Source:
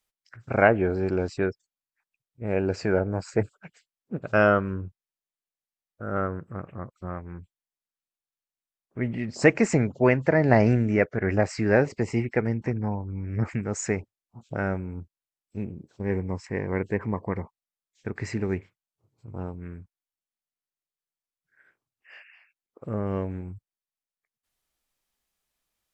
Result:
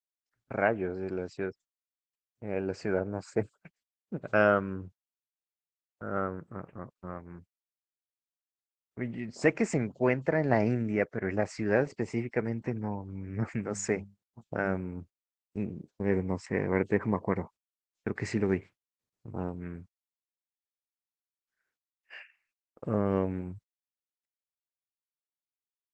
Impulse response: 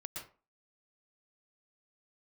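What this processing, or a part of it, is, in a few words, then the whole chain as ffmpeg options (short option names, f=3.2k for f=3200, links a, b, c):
video call: -filter_complex "[0:a]asplit=3[a][b][c];[a]afade=t=out:st=13.65:d=0.02[d];[b]bandreject=f=50:t=h:w=6,bandreject=f=100:t=h:w=6,bandreject=f=150:t=h:w=6,bandreject=f=200:t=h:w=6,afade=t=in:st=13.65:d=0.02,afade=t=out:st=14.68:d=0.02[e];[c]afade=t=in:st=14.68:d=0.02[f];[d][e][f]amix=inputs=3:normalize=0,highpass=120,dynaudnorm=f=370:g=13:m=11dB,agate=range=-24dB:threshold=-40dB:ratio=16:detection=peak,volume=-8dB" -ar 48000 -c:a libopus -b:a 16k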